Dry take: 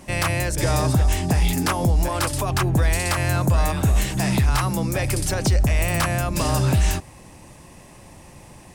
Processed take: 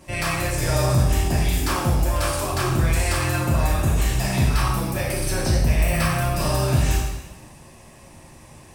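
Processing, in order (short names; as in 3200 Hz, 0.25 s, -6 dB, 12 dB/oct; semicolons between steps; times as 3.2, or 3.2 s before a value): 4.49–6.63 notch 7000 Hz, Q 6; two-slope reverb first 0.99 s, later 2.7 s, from -24 dB, DRR -5 dB; gain -6.5 dB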